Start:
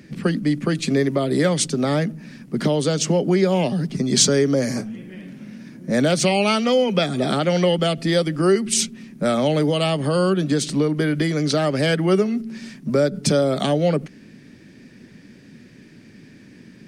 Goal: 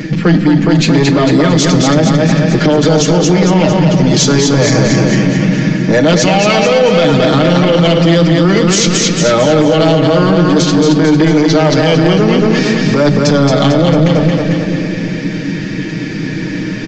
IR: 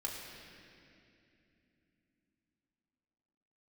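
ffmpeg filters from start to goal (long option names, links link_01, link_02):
-filter_complex "[0:a]highshelf=frequency=4900:gain=-5.5,bandreject=frequency=50:width_type=h:width=6,bandreject=frequency=100:width_type=h:width=6,bandreject=frequency=150:width_type=h:width=6,aecho=1:1:6.4:0.84,areverse,acompressor=threshold=-25dB:ratio=6,areverse,asoftclip=type=tanh:threshold=-24dB,aecho=1:1:224|448|672|896|1120|1344|1568:0.631|0.328|0.171|0.0887|0.0461|0.024|0.0125,asplit=2[link_01][link_02];[1:a]atrim=start_sample=2205[link_03];[link_02][link_03]afir=irnorm=-1:irlink=0,volume=-8.5dB[link_04];[link_01][link_04]amix=inputs=2:normalize=0,aresample=16000,aresample=44100,alimiter=level_in=23dB:limit=-1dB:release=50:level=0:latency=1,volume=-1dB"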